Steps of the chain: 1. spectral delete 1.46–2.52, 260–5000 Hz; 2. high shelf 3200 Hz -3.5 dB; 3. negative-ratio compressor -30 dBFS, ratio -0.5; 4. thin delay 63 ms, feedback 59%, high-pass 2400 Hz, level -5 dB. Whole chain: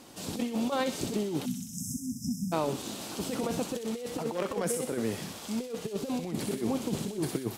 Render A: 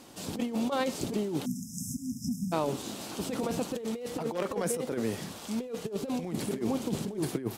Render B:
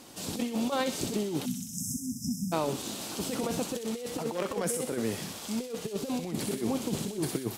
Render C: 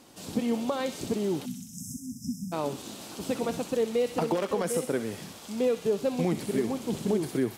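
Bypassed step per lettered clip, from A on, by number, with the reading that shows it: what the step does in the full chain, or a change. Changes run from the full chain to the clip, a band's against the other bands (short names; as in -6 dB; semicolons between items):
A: 4, echo-to-direct -9.5 dB to none; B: 2, 8 kHz band +2.5 dB; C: 3, crest factor change -2.0 dB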